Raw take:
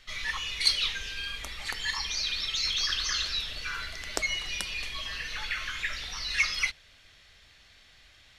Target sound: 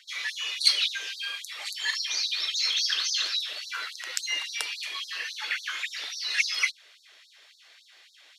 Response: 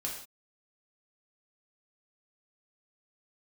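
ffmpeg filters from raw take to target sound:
-filter_complex "[0:a]asettb=1/sr,asplit=3[s0][s1][s2];[s0]atrim=end=3.854[s3];[s1]atrim=start=3.85:end=4.75,asetpts=PTS-STARTPTS,afade=t=in:d=0.004:c=qsin,afade=t=out:st=0.896:d=0.004:c=qsin,afreqshift=-94[s4];[s2]atrim=start=4.746[s5];[s3][s4]acrossfade=d=0.004:c1=hsin:c2=qsin[s6];[s6][s5]acrossfade=d=0.004:c1=qsin:c2=hsin,afftfilt=real='re*gte(b*sr/1024,270*pow(3800/270,0.5+0.5*sin(2*PI*3.6*pts/sr)))':imag='im*gte(b*sr/1024,270*pow(3800/270,0.5+0.5*sin(2*PI*3.6*pts/sr)))':win_size=1024:overlap=0.75,volume=1.41"

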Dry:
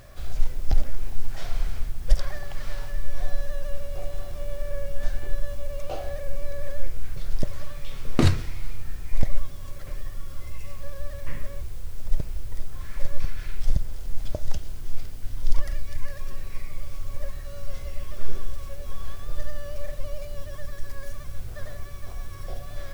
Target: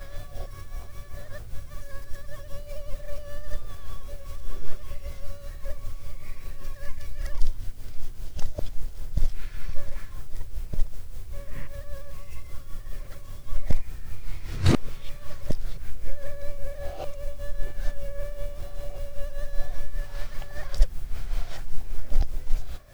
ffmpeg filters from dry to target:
-af "areverse,tremolo=f=5.1:d=0.54"

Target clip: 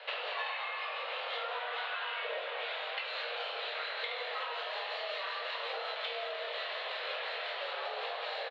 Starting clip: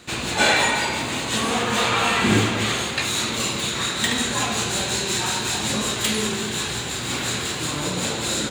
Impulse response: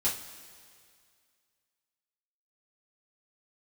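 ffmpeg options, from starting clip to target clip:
-filter_complex "[0:a]highpass=f=240:t=q:w=0.5412,highpass=f=240:t=q:w=1.307,lowpass=f=3400:t=q:w=0.5176,lowpass=f=3400:t=q:w=0.7071,lowpass=f=3400:t=q:w=1.932,afreqshift=250,asplit=2[s0][s1];[s1]adelay=23,volume=0.447[s2];[s0][s2]amix=inputs=2:normalize=0,acompressor=threshold=0.0178:ratio=10"

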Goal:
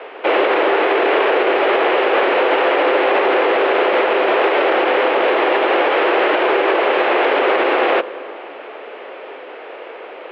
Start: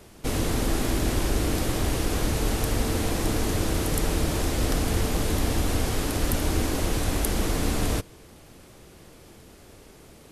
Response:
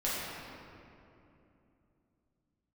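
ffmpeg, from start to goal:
-filter_complex "[0:a]asplit=2[s0][s1];[1:a]atrim=start_sample=2205,asetrate=34398,aresample=44100[s2];[s1][s2]afir=irnorm=-1:irlink=0,volume=0.0376[s3];[s0][s3]amix=inputs=2:normalize=0,highpass=f=350:t=q:w=0.5412,highpass=f=350:t=q:w=1.307,lowpass=f=2800:t=q:w=0.5176,lowpass=f=2800:t=q:w=0.7071,lowpass=f=2800:t=q:w=1.932,afreqshift=65,alimiter=level_in=20:limit=0.891:release=50:level=0:latency=1,volume=0.531"

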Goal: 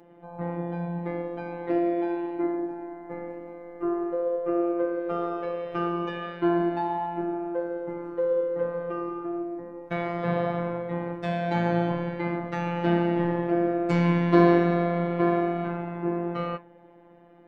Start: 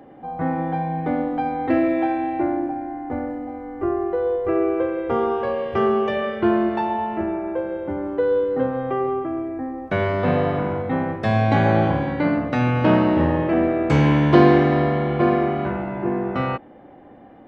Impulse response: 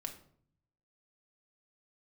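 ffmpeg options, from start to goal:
-af "flanger=delay=6:depth=8:regen=83:speed=1.7:shape=triangular,afftfilt=real='hypot(re,im)*cos(PI*b)':imag='0':win_size=1024:overlap=0.75,volume=1.12"

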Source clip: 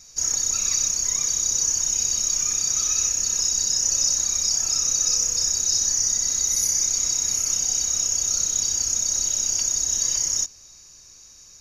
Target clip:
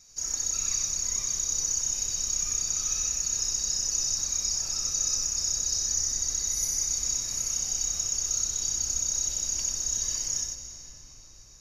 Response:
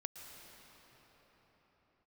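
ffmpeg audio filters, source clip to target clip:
-filter_complex "[0:a]asplit=2[s0][s1];[1:a]atrim=start_sample=2205,lowshelf=f=110:g=10.5,adelay=93[s2];[s1][s2]afir=irnorm=-1:irlink=0,volume=1[s3];[s0][s3]amix=inputs=2:normalize=0,volume=0.398"

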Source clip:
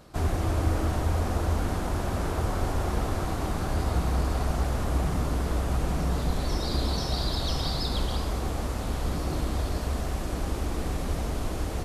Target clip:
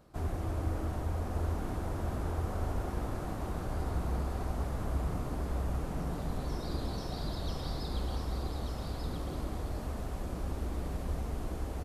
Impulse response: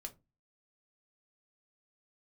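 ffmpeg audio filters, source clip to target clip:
-filter_complex "[0:a]equalizer=f=4800:w=0.37:g=-6,asplit=2[s0][s1];[s1]aecho=0:1:1189:0.531[s2];[s0][s2]amix=inputs=2:normalize=0,volume=0.398"

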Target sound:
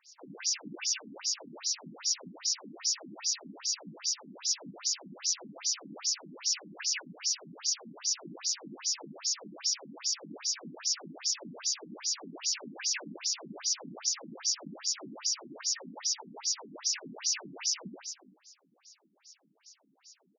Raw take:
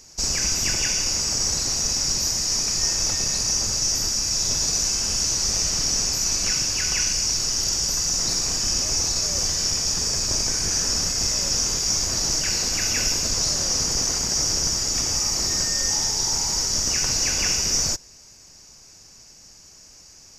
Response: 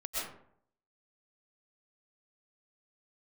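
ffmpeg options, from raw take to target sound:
-filter_complex "[0:a]asplit=8[s0][s1][s2][s3][s4][s5][s6][s7];[s1]adelay=90,afreqshift=45,volume=0.562[s8];[s2]adelay=180,afreqshift=90,volume=0.316[s9];[s3]adelay=270,afreqshift=135,volume=0.176[s10];[s4]adelay=360,afreqshift=180,volume=0.0989[s11];[s5]adelay=450,afreqshift=225,volume=0.0556[s12];[s6]adelay=540,afreqshift=270,volume=0.0309[s13];[s7]adelay=630,afreqshift=315,volume=0.0174[s14];[s0][s8][s9][s10][s11][s12][s13][s14]amix=inputs=8:normalize=0,afftfilt=real='re*between(b*sr/1024,210*pow(5400/210,0.5+0.5*sin(2*PI*2.5*pts/sr))/1.41,210*pow(5400/210,0.5+0.5*sin(2*PI*2.5*pts/sr))*1.41)':imag='im*between(b*sr/1024,210*pow(5400/210,0.5+0.5*sin(2*PI*2.5*pts/sr))/1.41,210*pow(5400/210,0.5+0.5*sin(2*PI*2.5*pts/sr))*1.41)':win_size=1024:overlap=0.75,volume=0.501"

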